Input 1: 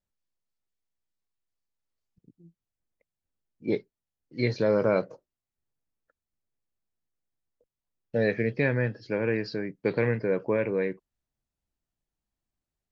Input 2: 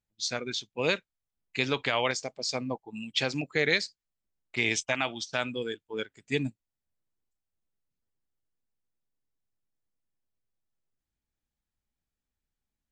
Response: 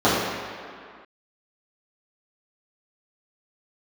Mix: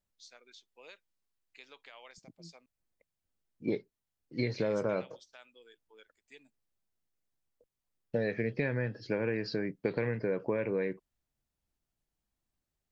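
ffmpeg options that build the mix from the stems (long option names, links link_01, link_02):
-filter_complex "[0:a]acompressor=threshold=-29dB:ratio=6,volume=1dB[link_01];[1:a]highpass=480,acompressor=threshold=-48dB:ratio=1.5,volume=-16dB,asplit=3[link_02][link_03][link_04];[link_02]atrim=end=2.66,asetpts=PTS-STARTPTS,afade=type=out:start_time=2.656:duration=0.004:curve=hsin[link_05];[link_03]atrim=start=2.66:end=4.39,asetpts=PTS-STARTPTS,volume=0[link_06];[link_04]atrim=start=4.39,asetpts=PTS-STARTPTS,afade=type=in:duration=0.004:curve=hsin[link_07];[link_05][link_06][link_07]concat=n=3:v=0:a=1[link_08];[link_01][link_08]amix=inputs=2:normalize=0"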